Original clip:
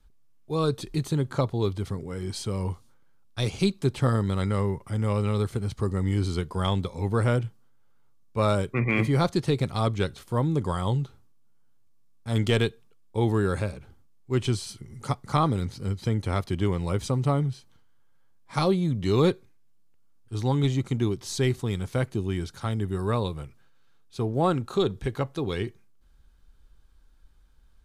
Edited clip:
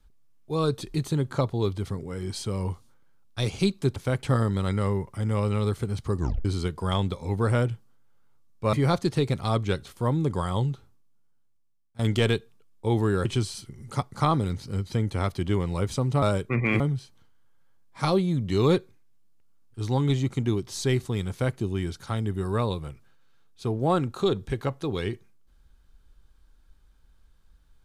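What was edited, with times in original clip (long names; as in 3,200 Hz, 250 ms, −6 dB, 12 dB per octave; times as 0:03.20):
0:05.91: tape stop 0.27 s
0:08.46–0:09.04: move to 0:17.34
0:10.91–0:12.30: fade out, to −19 dB
0:13.56–0:14.37: remove
0:21.84–0:22.11: duplicate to 0:03.96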